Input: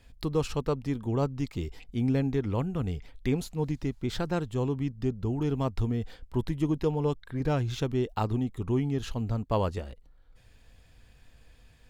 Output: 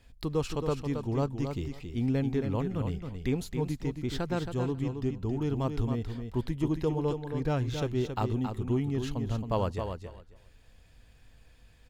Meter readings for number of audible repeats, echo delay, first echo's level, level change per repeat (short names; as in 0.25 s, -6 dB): 2, 0.272 s, -7.0 dB, -16.0 dB